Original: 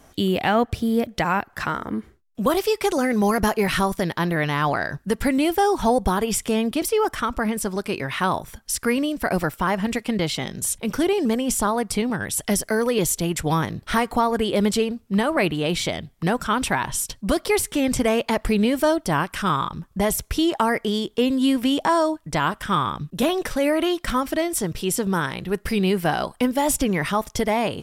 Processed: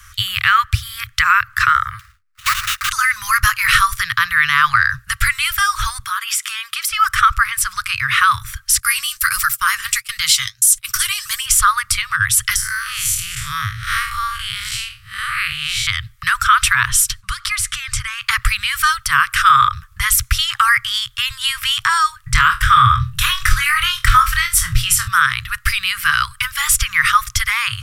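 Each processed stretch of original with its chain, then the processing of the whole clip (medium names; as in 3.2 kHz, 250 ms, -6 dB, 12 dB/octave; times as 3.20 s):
1.99–2.90 s: bass shelf 150 Hz -9.5 dB + static phaser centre 740 Hz, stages 6 + sample-rate reducer 3.3 kHz, jitter 20%
6.05–6.91 s: high-pass 610 Hz + compression 2.5:1, threshold -29 dBFS
8.80–11.46 s: tone controls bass -3 dB, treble +15 dB + gate -29 dBFS, range -19 dB + flange 1.5 Hz, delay 2.8 ms, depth 7.3 ms, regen +53%
12.56–15.87 s: spectral blur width 142 ms + peaking EQ 750 Hz -14.5 dB 0.78 oct
17.20–18.22 s: low-pass 10 kHz + compression 3:1, threshold -26 dBFS
22.25–25.08 s: bass shelf 310 Hz +11.5 dB + flutter echo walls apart 4.2 m, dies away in 0.21 s
whole clip: Chebyshev band-stop 120–1200 Hz, order 5; peaking EQ 1.1 kHz +5 dB 1.5 oct; loudness maximiser +13 dB; trim -1 dB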